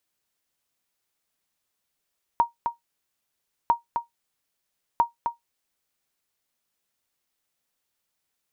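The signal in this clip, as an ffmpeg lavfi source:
-f lavfi -i "aevalsrc='0.299*(sin(2*PI*939*mod(t,1.3))*exp(-6.91*mod(t,1.3)/0.14)+0.473*sin(2*PI*939*max(mod(t,1.3)-0.26,0))*exp(-6.91*max(mod(t,1.3)-0.26,0)/0.14))':d=3.9:s=44100"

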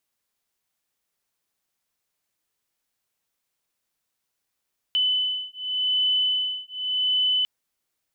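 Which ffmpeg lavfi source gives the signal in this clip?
-f lavfi -i "aevalsrc='0.0596*(sin(2*PI*3010*t)+sin(2*PI*3010.87*t))':d=2.5:s=44100"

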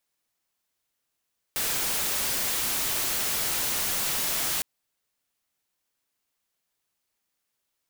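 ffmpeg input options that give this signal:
-f lavfi -i "anoisesrc=c=white:a=0.073:d=3.06:r=44100:seed=1"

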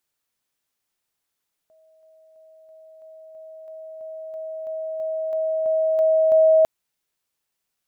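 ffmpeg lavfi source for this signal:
-f lavfi -i "aevalsrc='pow(10,(-53.5+3*floor(t/0.33))/20)*sin(2*PI*637*t)':d=4.95:s=44100"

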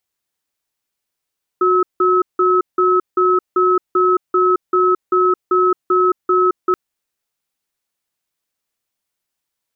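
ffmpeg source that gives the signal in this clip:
-f lavfi -i "aevalsrc='0.211*(sin(2*PI*366*t)+sin(2*PI*1290*t))*clip(min(mod(t,0.39),0.22-mod(t,0.39))/0.005,0,1)':d=5.13:s=44100"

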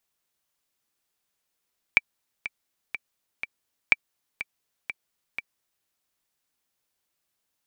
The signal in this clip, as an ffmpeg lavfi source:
-f lavfi -i "aevalsrc='pow(10,(-3-14.5*gte(mod(t,4*60/123),60/123))/20)*sin(2*PI*2330*mod(t,60/123))*exp(-6.91*mod(t,60/123)/0.03)':d=3.9:s=44100"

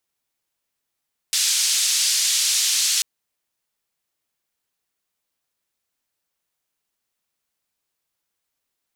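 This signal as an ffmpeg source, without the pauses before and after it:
-f lavfi -i "anoisesrc=c=white:d=1.69:r=44100:seed=1,highpass=f=4200,lowpass=f=6600,volume=-6.2dB"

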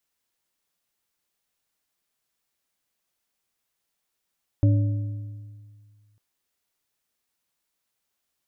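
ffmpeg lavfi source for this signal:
-f lavfi -i "aevalsrc='0.2*pow(10,-3*t/1.98)*sin(2*PI*105*t)+0.0708*pow(10,-3*t/1.461)*sin(2*PI*289.5*t)+0.0251*pow(10,-3*t/1.194)*sin(2*PI*567.4*t)':d=1.55:s=44100"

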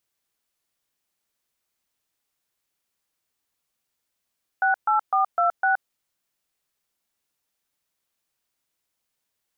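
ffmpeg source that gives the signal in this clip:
-f lavfi -i "aevalsrc='0.1*clip(min(mod(t,0.253),0.122-mod(t,0.253))/0.002,0,1)*(eq(floor(t/0.253),0)*(sin(2*PI*770*mod(t,0.253))+sin(2*PI*1477*mod(t,0.253)))+eq(floor(t/0.253),1)*(sin(2*PI*852*mod(t,0.253))+sin(2*PI*1336*mod(t,0.253)))+eq(floor(t/0.253),2)*(sin(2*PI*770*mod(t,0.253))+sin(2*PI*1209*mod(t,0.253)))+eq(floor(t/0.253),3)*(sin(2*PI*697*mod(t,0.253))+sin(2*PI*1336*mod(t,0.253)))+eq(floor(t/0.253),4)*(sin(2*PI*770*mod(t,0.253))+sin(2*PI*1477*mod(t,0.253))))':d=1.265:s=44100"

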